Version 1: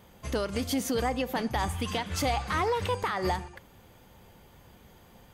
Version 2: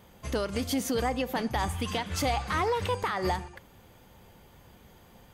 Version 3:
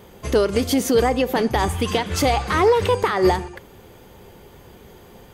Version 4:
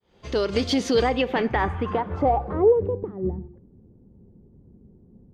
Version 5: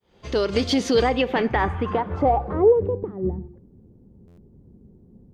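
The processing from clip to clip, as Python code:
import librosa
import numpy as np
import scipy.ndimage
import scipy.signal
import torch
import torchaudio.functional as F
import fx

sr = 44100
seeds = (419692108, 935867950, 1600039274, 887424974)

y1 = x
y2 = fx.peak_eq(y1, sr, hz=400.0, db=9.0, octaves=0.54)
y2 = y2 * librosa.db_to_amplitude(8.0)
y3 = fx.fade_in_head(y2, sr, length_s=0.57)
y3 = fx.rider(y3, sr, range_db=3, speed_s=2.0)
y3 = fx.filter_sweep_lowpass(y3, sr, from_hz=4400.0, to_hz=230.0, start_s=0.97, end_s=3.24, q=1.7)
y3 = y3 * librosa.db_to_amplitude(-4.5)
y4 = fx.buffer_glitch(y3, sr, at_s=(4.27,), block=512, repeats=8)
y4 = y4 * librosa.db_to_amplitude(1.5)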